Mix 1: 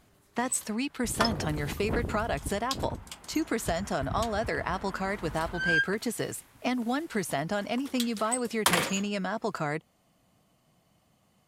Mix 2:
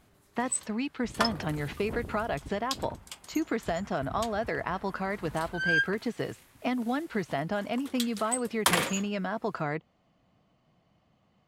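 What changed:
speech: add air absorption 170 m; second sound -7.0 dB

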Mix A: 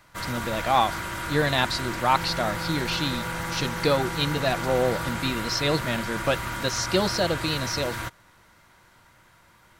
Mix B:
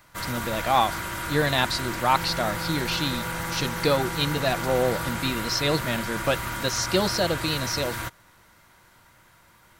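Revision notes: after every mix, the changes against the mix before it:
master: add high shelf 11000 Hz +8.5 dB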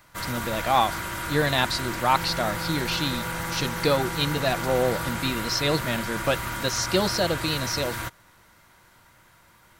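none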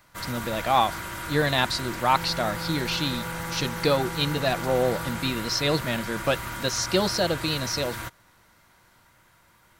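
first sound -3.0 dB

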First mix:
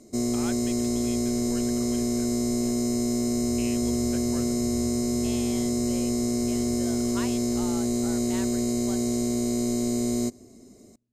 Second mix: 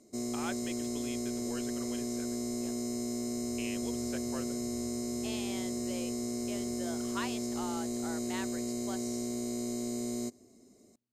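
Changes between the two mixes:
background -8.0 dB; master: add low shelf 120 Hz -10 dB

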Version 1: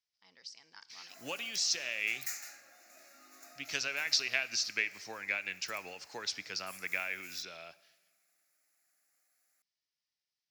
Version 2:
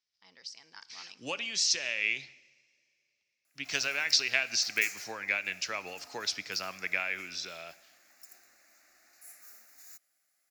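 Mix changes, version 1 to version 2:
speech +4.0 dB; background: entry +2.55 s

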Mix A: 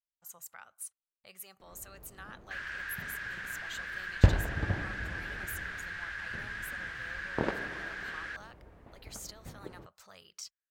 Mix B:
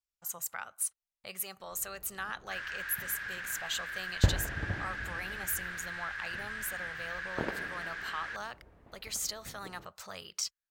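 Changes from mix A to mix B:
speech +10.0 dB; second sound -4.0 dB

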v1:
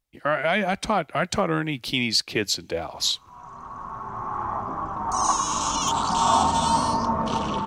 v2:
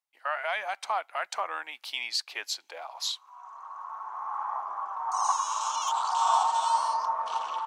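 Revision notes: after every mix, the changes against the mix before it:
master: add ladder high-pass 720 Hz, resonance 40%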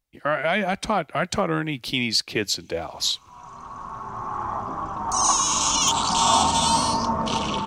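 first sound +7.0 dB; master: remove ladder high-pass 720 Hz, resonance 40%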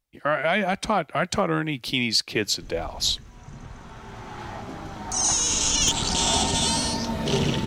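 first sound: remove brick-wall FIR high-pass 2100 Hz; second sound: remove synth low-pass 1100 Hz, resonance Q 10

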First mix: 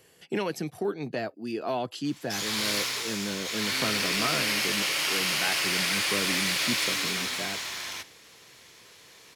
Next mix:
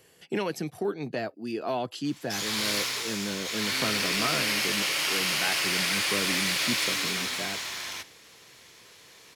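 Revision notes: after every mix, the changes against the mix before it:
none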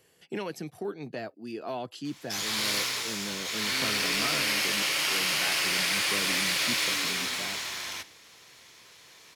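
speech -5.0 dB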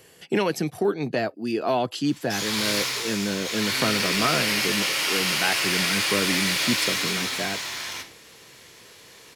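speech +11.5 dB; background: send +11.5 dB

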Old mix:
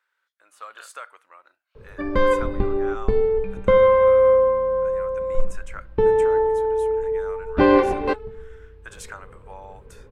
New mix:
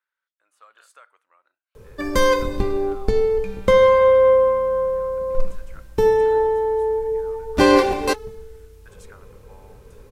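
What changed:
speech -11.5 dB; background: remove air absorption 420 m

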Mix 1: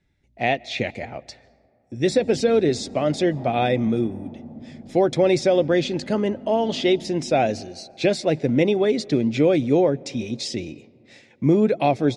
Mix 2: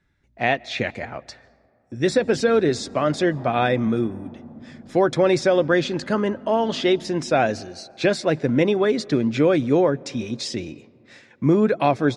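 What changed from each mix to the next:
background: send -10.5 dB; master: add band shelf 1300 Hz +9 dB 1 oct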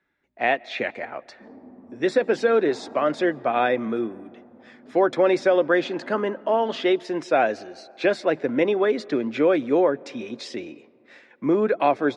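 background: entry -0.70 s; master: add three-band isolator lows -21 dB, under 250 Hz, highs -12 dB, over 3300 Hz

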